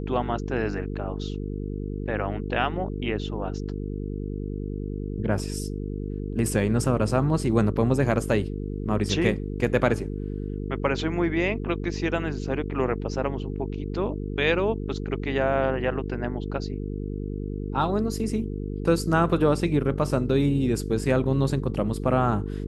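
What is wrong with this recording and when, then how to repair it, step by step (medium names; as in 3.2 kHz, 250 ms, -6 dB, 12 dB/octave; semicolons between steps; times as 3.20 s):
buzz 50 Hz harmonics 9 -31 dBFS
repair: de-hum 50 Hz, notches 9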